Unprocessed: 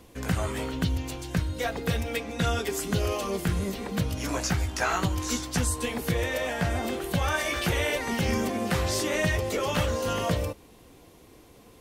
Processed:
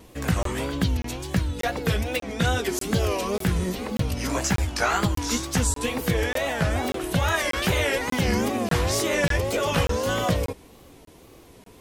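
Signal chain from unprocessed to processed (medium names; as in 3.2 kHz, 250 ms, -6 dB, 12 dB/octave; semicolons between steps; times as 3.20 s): wow and flutter 140 cents; crackling interface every 0.59 s, samples 1024, zero, from 0.43 s; trim +3.5 dB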